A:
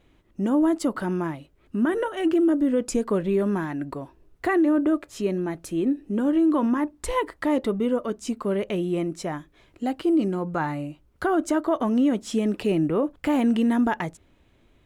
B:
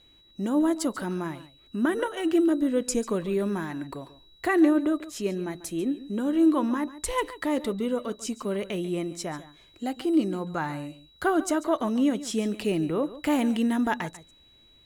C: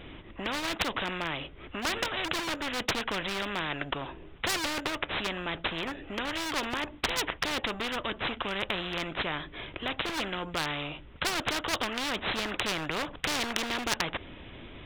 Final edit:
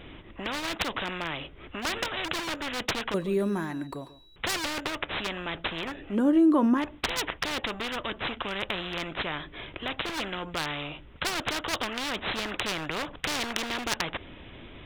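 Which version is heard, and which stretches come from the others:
C
3.14–4.36 from B
6.14–6.81 from A, crossfade 0.10 s

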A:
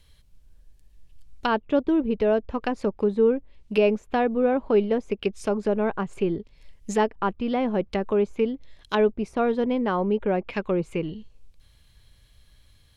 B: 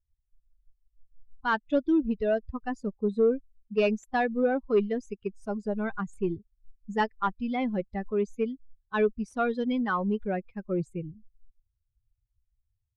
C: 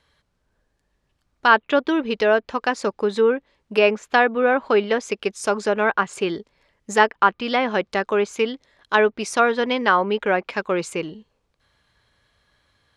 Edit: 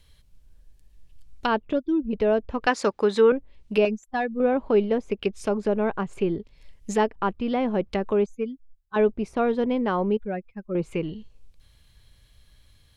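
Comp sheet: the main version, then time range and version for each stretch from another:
A
1.73–2.13 from B
2.67–3.32 from C
3.85–4.4 from B
8.26–8.96 from B
10.17–10.75 from B

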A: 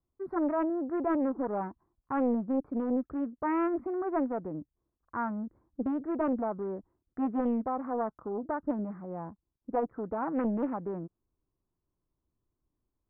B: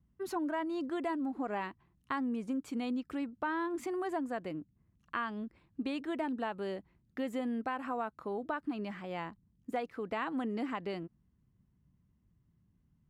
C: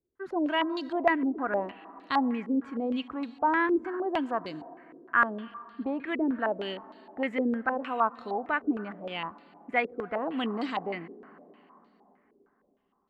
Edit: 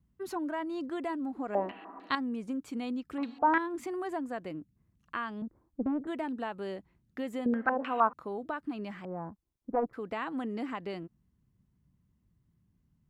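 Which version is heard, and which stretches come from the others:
B
1.55–2.15 from C
3.18–3.58 from C
5.42–6.07 from A
7.46–8.13 from C
9.05–9.93 from A

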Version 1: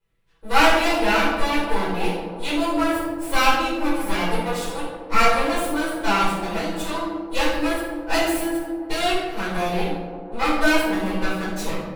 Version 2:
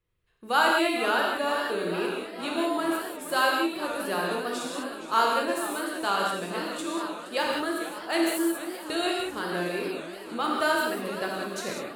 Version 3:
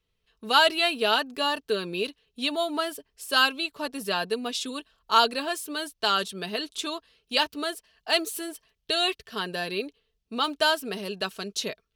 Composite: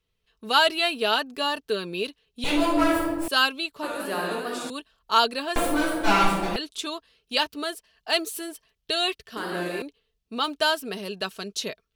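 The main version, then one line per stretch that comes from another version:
3
2.44–3.28 from 1
3.83–4.7 from 2
5.56–6.56 from 1
9.37–9.82 from 2

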